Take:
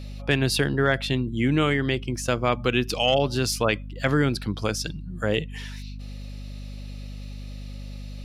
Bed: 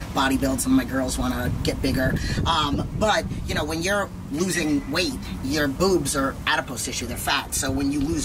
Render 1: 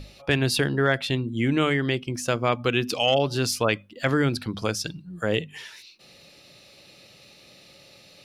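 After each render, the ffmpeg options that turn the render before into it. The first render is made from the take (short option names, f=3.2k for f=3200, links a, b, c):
-af "bandreject=f=50:t=h:w=6,bandreject=f=100:t=h:w=6,bandreject=f=150:t=h:w=6,bandreject=f=200:t=h:w=6,bandreject=f=250:t=h:w=6"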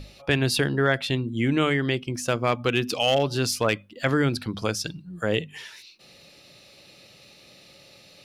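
-filter_complex "[0:a]asettb=1/sr,asplit=3[a][b][c];[a]atrim=end=2.104[d];[b]atrim=start=2.1:end=3.86,asetpts=PTS-STARTPTS,afade=t=in:d=0.004:c=qsin,afade=t=out:st=1.756:d=0.004:c=qsin,volume=13dB,asoftclip=hard,volume=-13dB[e];[c]atrim=start=3.856[f];[d][e]acrossfade=d=0.004:c1=hsin:c2=qsin[g];[g][f]acrossfade=d=0.004:c1=qsin:c2=hsin"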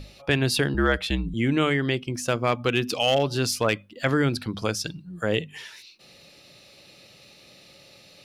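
-filter_complex "[0:a]asettb=1/sr,asplit=3[a][b][c];[a]atrim=end=0.744[d];[b]atrim=start=0.74:end=1.34,asetpts=PTS-STARTPTS,afade=t=in:d=0.004:c=qsin,afade=t=out:st=0.596:d=0.004:c=qsin,afreqshift=-66[e];[c]atrim=start=1.336[f];[d][e]acrossfade=d=0.004:c1=hsin:c2=qsin[g];[g][f]acrossfade=d=0.004:c1=qsin:c2=hsin"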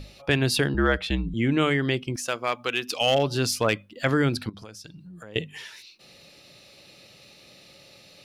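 -filter_complex "[0:a]asettb=1/sr,asplit=3[a][b][c];[a]atrim=end=0.684[d];[b]atrim=start=0.68:end=1.59,asetpts=PTS-STARTPTS,afade=t=in:d=0.004:c=qsin,afade=t=out:st=0.906:d=0.004:c=qsin,highshelf=f=7k:g=-10[e];[c]atrim=start=1.586[f];[d][e]acrossfade=d=0.004:c1=hsin:c2=qsin[g];[g][f]acrossfade=d=0.004:c1=qsin:c2=hsin,asettb=1/sr,asplit=3[h][i][j];[h]atrim=end=2.164[k];[i]atrim=start=2.16:end=3.01,asetpts=PTS-STARTPTS,afade=t=in:d=0.004:c=qsin,afade=t=out:st=0.846:d=0.004:c=qsin,highpass=f=800:p=1[l];[j]atrim=start=3.006[m];[k][l]acrossfade=d=0.004:c1=hsin:c2=qsin[n];[n][m]acrossfade=d=0.004:c1=qsin:c2=hsin,asettb=1/sr,asplit=3[o][p][q];[o]atrim=end=4.494[r];[p]atrim=start=4.49:end=5.36,asetpts=PTS-STARTPTS,afade=t=in:d=0.004:c=qsin,afade=t=out:st=0.866:d=0.004:c=qsin,acompressor=threshold=-41dB:ratio=5:attack=3.2:release=140:knee=1:detection=peak[s];[q]atrim=start=5.356[t];[r][s]acrossfade=d=0.004:c1=hsin:c2=qsin[u];[u][t]acrossfade=d=0.004:c1=qsin:c2=hsin"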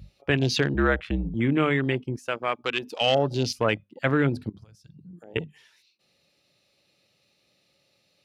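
-af "highpass=f=49:w=0.5412,highpass=f=49:w=1.3066,afwtdn=0.0282"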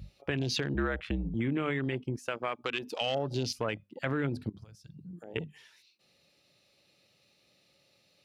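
-af "alimiter=limit=-15.5dB:level=0:latency=1:release=41,acompressor=threshold=-32dB:ratio=2"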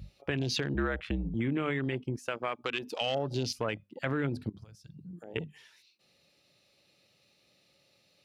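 -af anull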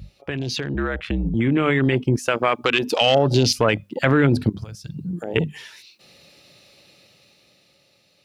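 -filter_complex "[0:a]asplit=2[a][b];[b]alimiter=level_in=3.5dB:limit=-24dB:level=0:latency=1:release=14,volume=-3.5dB,volume=1dB[c];[a][c]amix=inputs=2:normalize=0,dynaudnorm=f=330:g=9:m=11.5dB"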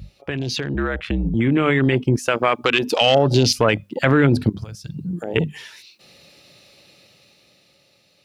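-af "volume=1.5dB,alimiter=limit=-3dB:level=0:latency=1"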